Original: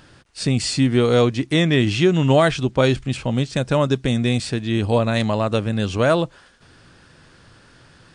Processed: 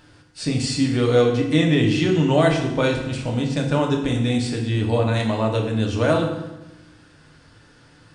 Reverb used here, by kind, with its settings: FDN reverb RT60 1 s, low-frequency decay 1.3×, high-frequency decay 0.8×, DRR 0 dB; trim -5 dB

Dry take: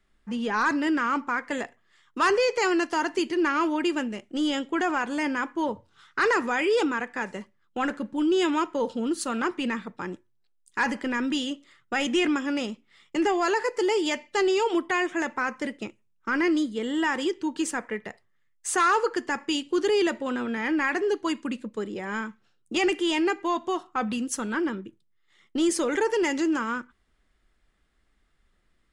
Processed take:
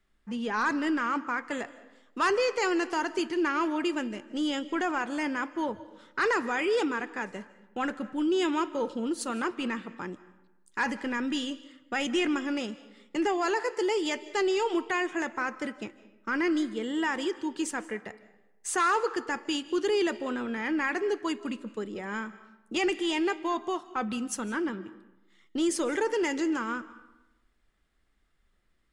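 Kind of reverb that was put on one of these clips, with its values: algorithmic reverb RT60 0.97 s, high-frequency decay 0.65×, pre-delay 115 ms, DRR 16.5 dB; trim -3.5 dB

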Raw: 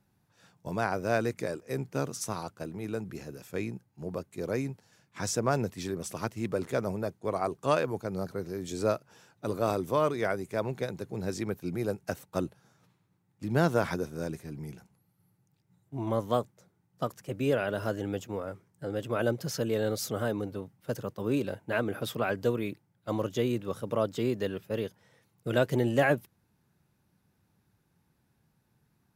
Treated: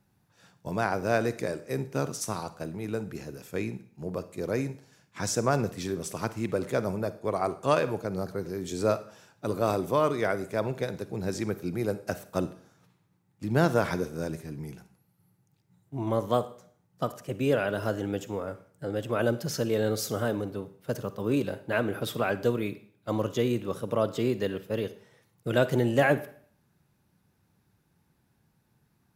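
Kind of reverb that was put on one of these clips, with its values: Schroeder reverb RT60 0.54 s, DRR 13.5 dB; trim +2 dB

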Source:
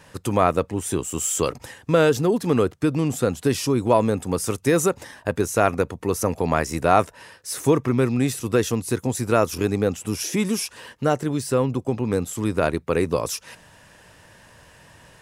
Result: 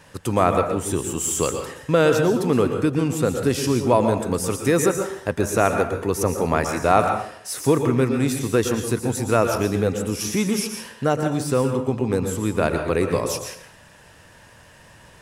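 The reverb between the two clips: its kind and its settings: plate-style reverb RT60 0.63 s, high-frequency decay 0.75×, pre-delay 105 ms, DRR 5 dB

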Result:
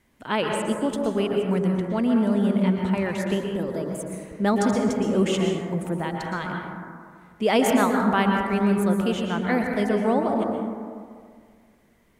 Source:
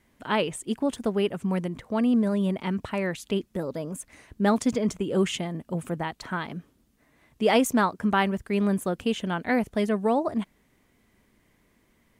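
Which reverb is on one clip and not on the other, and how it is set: plate-style reverb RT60 2 s, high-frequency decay 0.3×, pre-delay 105 ms, DRR 1 dB

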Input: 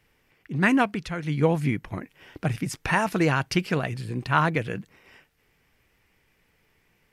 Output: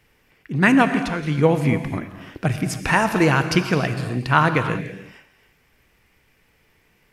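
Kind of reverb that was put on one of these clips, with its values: gated-style reverb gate 350 ms flat, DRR 8 dB; trim +5 dB

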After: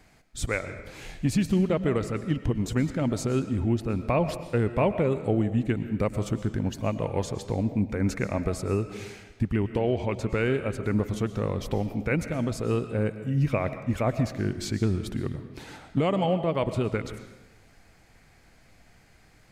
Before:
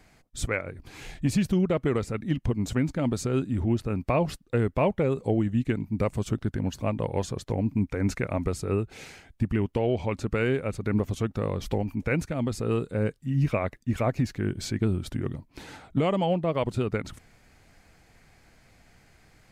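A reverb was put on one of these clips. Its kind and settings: algorithmic reverb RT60 1.1 s, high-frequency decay 0.85×, pre-delay 80 ms, DRR 10.5 dB

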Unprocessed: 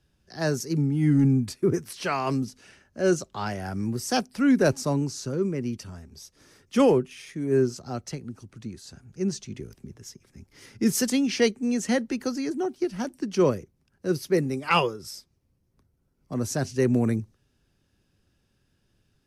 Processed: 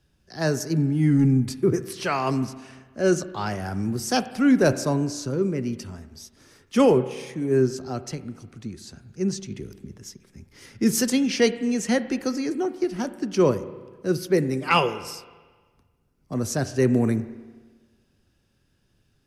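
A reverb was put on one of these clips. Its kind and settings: spring tank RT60 1.4 s, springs 31/38 ms, chirp 60 ms, DRR 12.5 dB; trim +2 dB

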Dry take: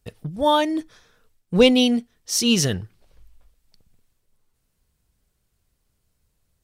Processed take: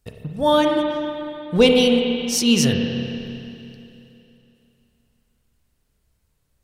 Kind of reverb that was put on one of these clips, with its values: spring tank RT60 2.9 s, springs 30/46 ms, chirp 30 ms, DRR 1.5 dB

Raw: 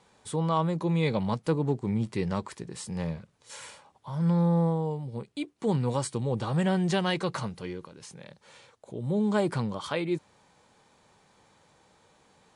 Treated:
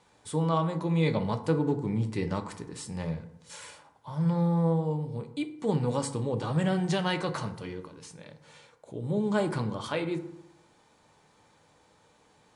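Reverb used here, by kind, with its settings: FDN reverb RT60 0.82 s, low-frequency decay 1.1×, high-frequency decay 0.45×, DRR 6.5 dB; trim -1.5 dB

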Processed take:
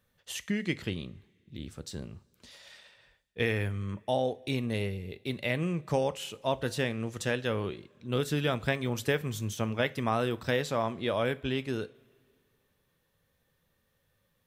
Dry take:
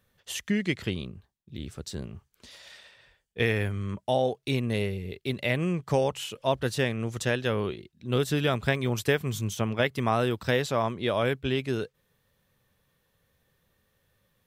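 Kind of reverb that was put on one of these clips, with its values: two-slope reverb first 0.3 s, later 2.3 s, from -21 dB, DRR 13.5 dB; trim -3.5 dB

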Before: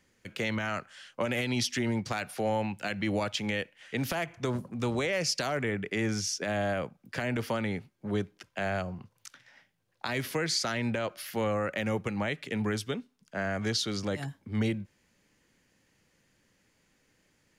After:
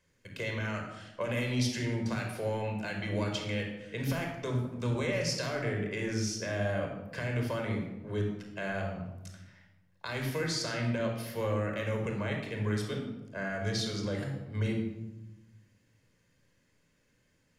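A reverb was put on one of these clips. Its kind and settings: simulated room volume 3800 m³, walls furnished, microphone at 5.2 m; trim -7.5 dB

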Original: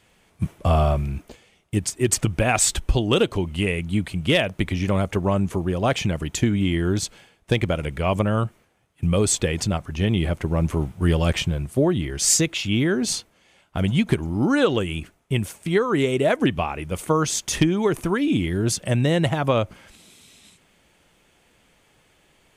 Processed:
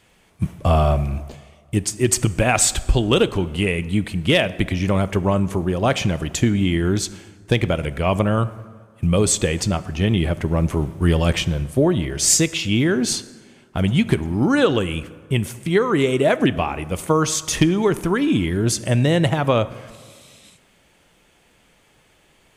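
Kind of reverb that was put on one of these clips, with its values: plate-style reverb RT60 1.7 s, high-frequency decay 0.55×, DRR 15 dB; trim +2.5 dB

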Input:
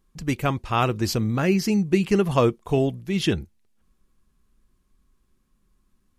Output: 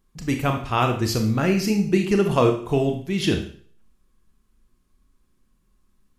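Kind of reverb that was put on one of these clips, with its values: Schroeder reverb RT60 0.49 s, combs from 25 ms, DRR 4 dB

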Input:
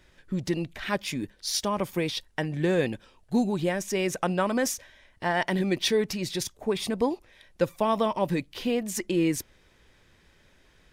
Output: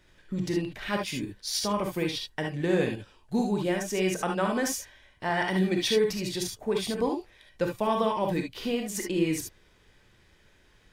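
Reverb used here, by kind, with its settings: gated-style reverb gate 90 ms rising, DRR 2 dB; trim -3 dB

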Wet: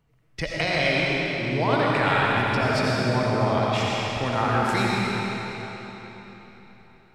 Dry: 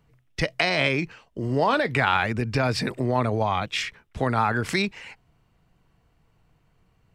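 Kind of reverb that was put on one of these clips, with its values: algorithmic reverb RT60 4 s, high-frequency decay 0.9×, pre-delay 45 ms, DRR -5 dB; trim -4.5 dB

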